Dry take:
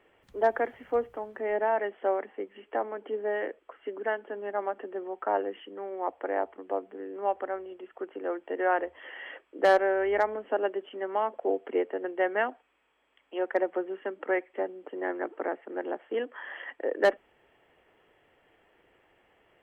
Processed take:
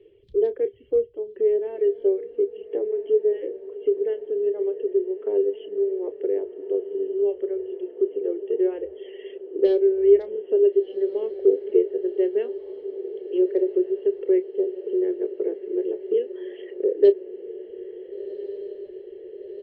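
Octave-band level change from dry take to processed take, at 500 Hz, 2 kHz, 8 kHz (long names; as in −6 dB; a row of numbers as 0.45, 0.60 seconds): +8.5 dB, below −15 dB, can't be measured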